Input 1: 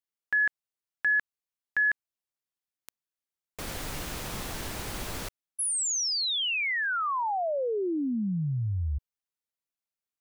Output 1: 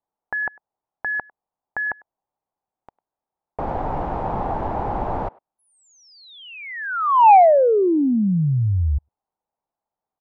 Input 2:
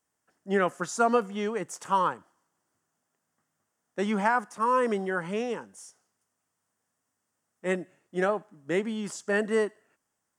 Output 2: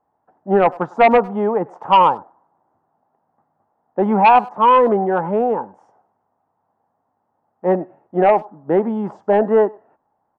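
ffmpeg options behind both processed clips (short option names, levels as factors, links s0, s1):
-filter_complex "[0:a]lowpass=f=830:t=q:w=4.1,asplit=2[s0][s1];[s1]adelay=100,highpass=300,lowpass=3400,asoftclip=type=hard:threshold=0.188,volume=0.0631[s2];[s0][s2]amix=inputs=2:normalize=0,aeval=exprs='0.501*sin(PI/2*2*val(0)/0.501)':c=same"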